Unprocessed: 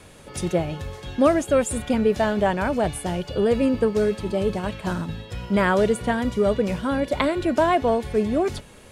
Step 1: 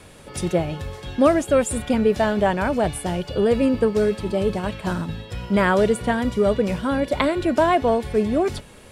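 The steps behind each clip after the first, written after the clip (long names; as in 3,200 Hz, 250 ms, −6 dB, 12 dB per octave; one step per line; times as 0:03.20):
notch filter 6,500 Hz, Q 20
level +1.5 dB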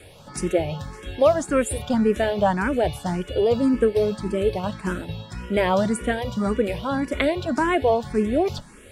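frequency shifter mixed with the dry sound +1.8 Hz
level +1.5 dB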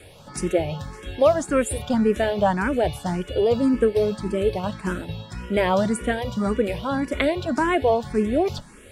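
no processing that can be heard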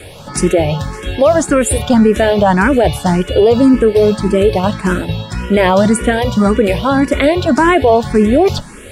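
boost into a limiter +14 dB
level −1 dB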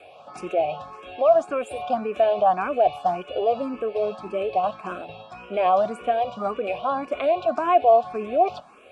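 formant filter a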